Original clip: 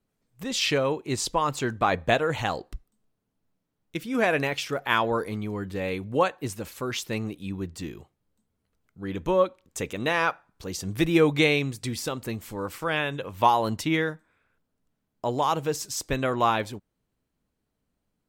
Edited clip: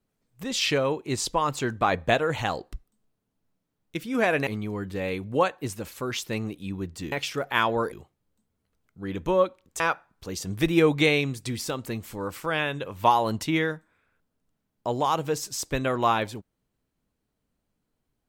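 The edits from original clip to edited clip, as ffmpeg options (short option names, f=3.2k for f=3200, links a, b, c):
-filter_complex "[0:a]asplit=5[a][b][c][d][e];[a]atrim=end=4.472[f];[b]atrim=start=5.268:end=7.922[g];[c]atrim=start=4.468:end=5.272[h];[d]atrim=start=7.918:end=9.802[i];[e]atrim=start=10.178[j];[f][g]acrossfade=d=0.004:c1=hsin:c2=hsin[k];[k][h]acrossfade=d=0.004:c1=hsin:c2=hsin[l];[l][i]acrossfade=d=0.004:c1=hsin:c2=hsin[m];[m][j]acrossfade=d=0.004:c1=hsin:c2=hsin"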